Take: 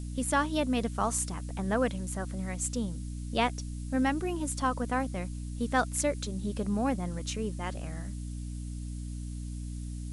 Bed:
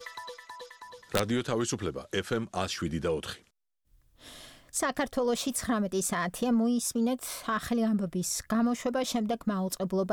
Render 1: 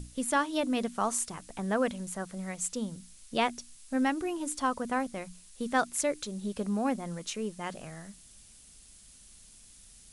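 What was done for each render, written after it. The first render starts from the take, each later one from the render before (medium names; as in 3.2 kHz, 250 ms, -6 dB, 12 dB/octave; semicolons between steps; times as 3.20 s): hum notches 60/120/180/240/300 Hz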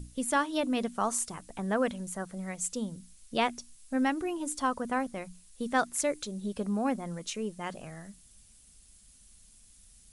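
noise reduction 6 dB, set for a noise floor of -55 dBFS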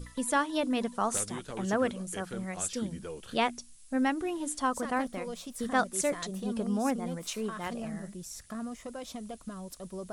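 add bed -11.5 dB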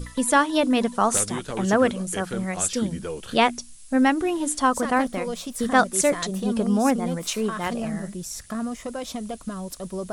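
trim +9 dB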